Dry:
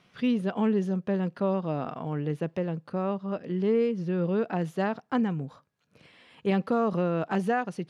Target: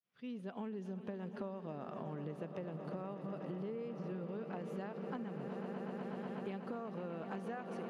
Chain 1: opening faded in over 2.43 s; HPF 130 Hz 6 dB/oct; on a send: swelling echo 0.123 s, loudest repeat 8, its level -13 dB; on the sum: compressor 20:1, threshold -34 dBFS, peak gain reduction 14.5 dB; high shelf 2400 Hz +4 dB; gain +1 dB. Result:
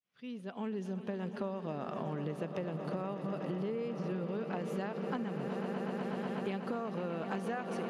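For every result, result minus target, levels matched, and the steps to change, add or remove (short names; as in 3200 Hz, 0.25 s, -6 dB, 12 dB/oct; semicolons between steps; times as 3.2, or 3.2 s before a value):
compressor: peak gain reduction -5.5 dB; 4000 Hz band +3.5 dB
change: compressor 20:1, threshold -40 dBFS, peak gain reduction 20 dB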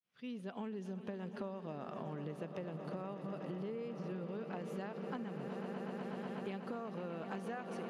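4000 Hz band +3.5 dB
change: high shelf 2400 Hz -2 dB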